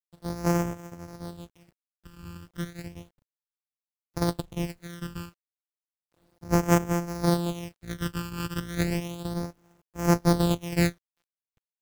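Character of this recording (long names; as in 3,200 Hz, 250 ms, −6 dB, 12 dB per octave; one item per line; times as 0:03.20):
a buzz of ramps at a fixed pitch in blocks of 256 samples
phaser sweep stages 12, 0.33 Hz, lowest notch 650–3,900 Hz
a quantiser's noise floor 12 bits, dither none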